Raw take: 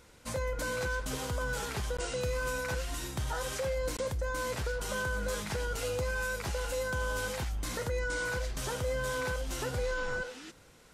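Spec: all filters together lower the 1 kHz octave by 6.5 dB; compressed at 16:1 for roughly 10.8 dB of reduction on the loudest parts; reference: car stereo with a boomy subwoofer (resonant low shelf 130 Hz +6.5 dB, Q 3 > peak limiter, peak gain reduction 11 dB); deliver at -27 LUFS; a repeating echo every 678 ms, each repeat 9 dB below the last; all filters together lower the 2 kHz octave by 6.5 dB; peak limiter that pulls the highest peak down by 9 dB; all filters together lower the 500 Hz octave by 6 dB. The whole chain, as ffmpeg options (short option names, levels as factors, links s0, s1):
-af "equalizer=f=500:t=o:g=-4.5,equalizer=f=1000:t=o:g=-4.5,equalizer=f=2000:t=o:g=-7,acompressor=threshold=0.00794:ratio=16,alimiter=level_in=7.08:limit=0.0631:level=0:latency=1,volume=0.141,lowshelf=f=130:t=q:w=3:g=6.5,aecho=1:1:678|1356|2034|2712:0.355|0.124|0.0435|0.0152,volume=14.1,alimiter=limit=0.126:level=0:latency=1"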